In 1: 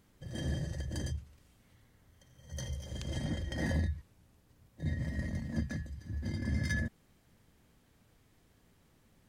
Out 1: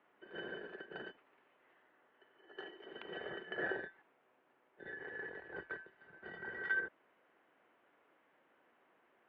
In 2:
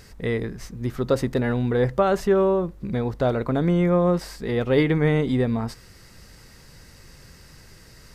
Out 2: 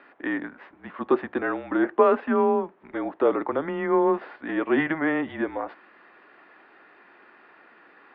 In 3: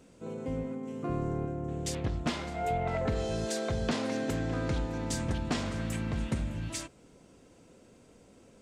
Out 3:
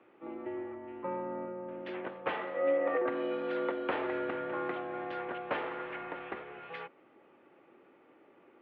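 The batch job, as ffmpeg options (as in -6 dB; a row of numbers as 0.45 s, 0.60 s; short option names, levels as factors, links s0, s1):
-filter_complex "[0:a]acrossover=split=450 2500:gain=0.0891 1 0.141[s0][s1][s2];[s0][s1][s2]amix=inputs=3:normalize=0,highpass=f=410:t=q:w=0.5412,highpass=f=410:t=q:w=1.307,lowpass=f=3400:t=q:w=0.5176,lowpass=f=3400:t=q:w=0.7071,lowpass=f=3400:t=q:w=1.932,afreqshift=-160,volume=1.78"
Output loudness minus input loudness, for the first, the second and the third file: -6.5 LU, -2.0 LU, -2.5 LU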